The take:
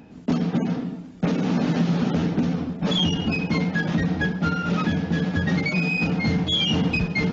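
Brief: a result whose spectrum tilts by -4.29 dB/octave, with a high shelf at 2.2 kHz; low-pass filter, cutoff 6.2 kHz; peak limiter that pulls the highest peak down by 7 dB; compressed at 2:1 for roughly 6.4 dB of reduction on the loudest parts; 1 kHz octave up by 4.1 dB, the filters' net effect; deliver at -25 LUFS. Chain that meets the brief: low-pass 6.2 kHz; peaking EQ 1 kHz +5 dB; treble shelf 2.2 kHz +3.5 dB; compression 2:1, threshold -29 dBFS; trim +6 dB; peak limiter -17 dBFS

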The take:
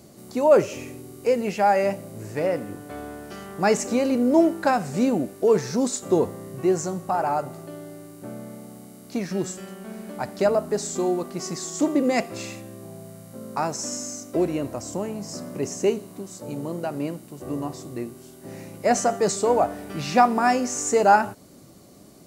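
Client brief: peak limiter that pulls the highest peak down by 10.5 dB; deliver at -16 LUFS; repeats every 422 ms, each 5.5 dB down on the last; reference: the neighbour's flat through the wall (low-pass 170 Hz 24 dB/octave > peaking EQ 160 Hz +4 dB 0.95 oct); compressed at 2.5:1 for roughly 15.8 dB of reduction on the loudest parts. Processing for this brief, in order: compression 2.5:1, threshold -36 dBFS; peak limiter -29 dBFS; low-pass 170 Hz 24 dB/octave; peaking EQ 160 Hz +4 dB 0.95 oct; feedback delay 422 ms, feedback 53%, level -5.5 dB; trim +29.5 dB

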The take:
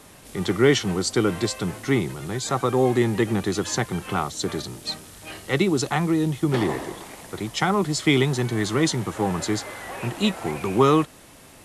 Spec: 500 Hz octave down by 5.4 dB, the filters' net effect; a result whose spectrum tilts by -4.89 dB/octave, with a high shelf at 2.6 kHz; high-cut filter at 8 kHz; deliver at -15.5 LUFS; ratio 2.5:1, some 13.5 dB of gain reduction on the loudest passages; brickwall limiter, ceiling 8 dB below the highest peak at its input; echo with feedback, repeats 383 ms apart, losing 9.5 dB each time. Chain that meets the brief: low-pass 8 kHz; peaking EQ 500 Hz -7.5 dB; treble shelf 2.6 kHz -3.5 dB; compression 2.5:1, threshold -37 dBFS; peak limiter -27 dBFS; feedback delay 383 ms, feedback 33%, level -9.5 dB; trim +22 dB

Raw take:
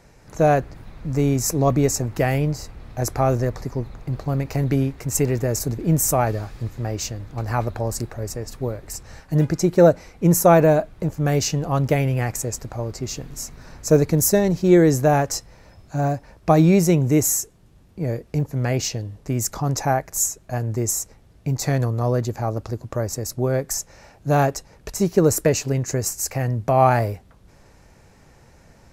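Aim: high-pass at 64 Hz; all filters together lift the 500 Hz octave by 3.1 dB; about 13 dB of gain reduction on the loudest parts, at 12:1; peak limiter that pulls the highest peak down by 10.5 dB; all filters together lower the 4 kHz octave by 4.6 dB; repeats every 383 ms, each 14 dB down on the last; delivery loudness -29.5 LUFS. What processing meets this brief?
high-pass 64 Hz; peaking EQ 500 Hz +4 dB; peaking EQ 4 kHz -7 dB; compression 12:1, threshold -19 dBFS; peak limiter -17.5 dBFS; feedback delay 383 ms, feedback 20%, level -14 dB; trim -1 dB

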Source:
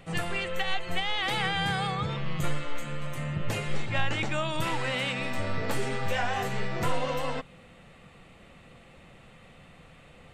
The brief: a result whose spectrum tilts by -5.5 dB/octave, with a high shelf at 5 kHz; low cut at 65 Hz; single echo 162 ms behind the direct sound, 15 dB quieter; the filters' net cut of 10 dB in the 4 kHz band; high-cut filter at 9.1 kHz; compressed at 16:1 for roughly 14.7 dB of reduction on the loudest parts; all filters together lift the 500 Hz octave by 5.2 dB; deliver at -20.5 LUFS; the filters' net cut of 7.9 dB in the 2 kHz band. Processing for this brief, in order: high-pass 65 Hz; low-pass 9.1 kHz; peaking EQ 500 Hz +6.5 dB; peaking EQ 2 kHz -7 dB; peaking EQ 4 kHz -8 dB; treble shelf 5 kHz -7 dB; compression 16:1, threshold -37 dBFS; delay 162 ms -15 dB; trim +21 dB

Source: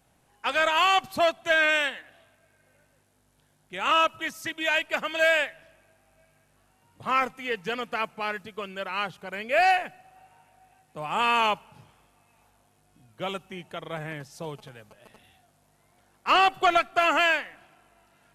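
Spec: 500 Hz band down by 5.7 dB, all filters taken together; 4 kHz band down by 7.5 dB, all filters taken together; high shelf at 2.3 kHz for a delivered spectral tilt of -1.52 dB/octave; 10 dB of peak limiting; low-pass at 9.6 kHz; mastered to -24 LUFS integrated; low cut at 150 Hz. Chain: high-pass 150 Hz; low-pass 9.6 kHz; peaking EQ 500 Hz -8 dB; treble shelf 2.3 kHz -7 dB; peaking EQ 4 kHz -4.5 dB; trim +12 dB; peak limiter -12 dBFS

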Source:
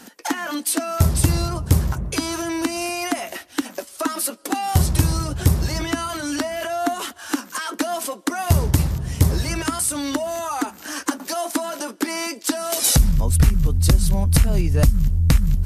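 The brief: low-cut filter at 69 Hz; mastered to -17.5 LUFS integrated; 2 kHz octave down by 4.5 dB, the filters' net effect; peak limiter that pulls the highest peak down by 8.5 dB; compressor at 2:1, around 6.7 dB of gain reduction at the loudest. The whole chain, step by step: high-pass 69 Hz; peaking EQ 2 kHz -6 dB; compression 2:1, threshold -24 dBFS; trim +10.5 dB; peak limiter -5.5 dBFS

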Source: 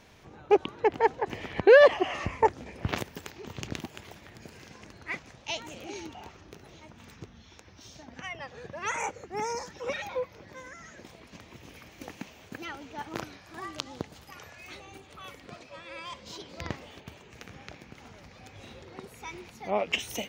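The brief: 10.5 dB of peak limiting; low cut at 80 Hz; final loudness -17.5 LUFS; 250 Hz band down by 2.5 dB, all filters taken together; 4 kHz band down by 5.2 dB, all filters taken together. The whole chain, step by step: high-pass 80 Hz; peaking EQ 250 Hz -4 dB; peaking EQ 4 kHz -8 dB; trim +18.5 dB; peak limiter 0 dBFS

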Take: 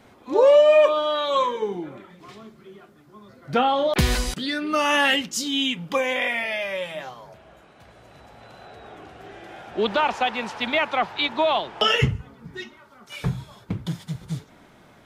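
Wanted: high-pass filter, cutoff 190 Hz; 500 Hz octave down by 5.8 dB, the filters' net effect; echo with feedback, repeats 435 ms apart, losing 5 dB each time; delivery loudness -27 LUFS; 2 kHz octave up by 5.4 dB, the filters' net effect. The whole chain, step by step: high-pass 190 Hz; peaking EQ 500 Hz -7.5 dB; peaking EQ 2 kHz +7 dB; feedback delay 435 ms, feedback 56%, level -5 dB; trim -6.5 dB

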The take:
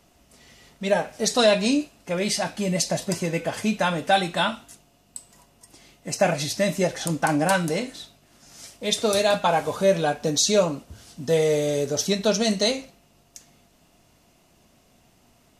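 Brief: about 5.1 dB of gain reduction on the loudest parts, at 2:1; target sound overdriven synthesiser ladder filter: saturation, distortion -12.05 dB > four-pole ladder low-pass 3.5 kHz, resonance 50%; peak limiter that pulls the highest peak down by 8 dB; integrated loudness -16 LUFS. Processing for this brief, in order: compression 2:1, threshold -23 dBFS; peak limiter -18 dBFS; saturation -26.5 dBFS; four-pole ladder low-pass 3.5 kHz, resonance 50%; trim +25.5 dB

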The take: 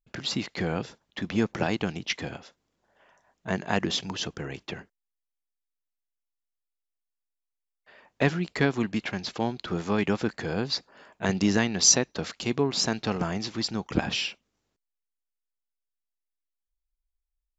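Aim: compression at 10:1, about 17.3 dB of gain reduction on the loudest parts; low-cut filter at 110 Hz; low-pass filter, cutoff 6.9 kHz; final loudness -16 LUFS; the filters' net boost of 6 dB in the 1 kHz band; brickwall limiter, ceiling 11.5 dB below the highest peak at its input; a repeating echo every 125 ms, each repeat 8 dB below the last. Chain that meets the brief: high-pass 110 Hz; low-pass 6.9 kHz; peaking EQ 1 kHz +8 dB; compression 10:1, threshold -34 dBFS; peak limiter -28.5 dBFS; feedback delay 125 ms, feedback 40%, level -8 dB; trim +24.5 dB

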